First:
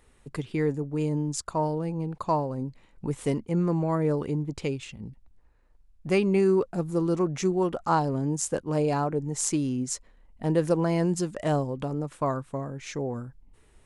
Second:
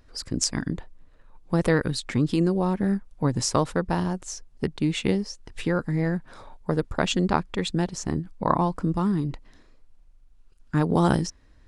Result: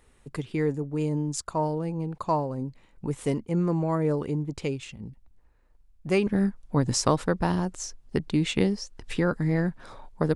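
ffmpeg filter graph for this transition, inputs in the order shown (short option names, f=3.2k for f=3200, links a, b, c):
-filter_complex "[0:a]apad=whole_dur=10.35,atrim=end=10.35,atrim=end=6.272[a];[1:a]atrim=start=2.748:end=6.83[b];[a][b]acrossfade=d=0.004:c1=hsin:c2=hsin"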